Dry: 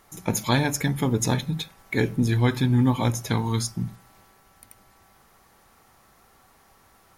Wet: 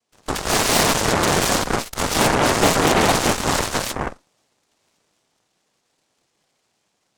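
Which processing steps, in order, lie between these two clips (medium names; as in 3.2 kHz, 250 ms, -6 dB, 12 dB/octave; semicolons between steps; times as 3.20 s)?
1.23–2.03 s: sorted samples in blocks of 16 samples; gated-style reverb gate 270 ms rising, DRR -6 dB; noise-vocoded speech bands 2; Chebyshev shaper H 3 -27 dB, 5 -19 dB, 6 -7 dB, 7 -15 dB, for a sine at -6 dBFS; trim -3.5 dB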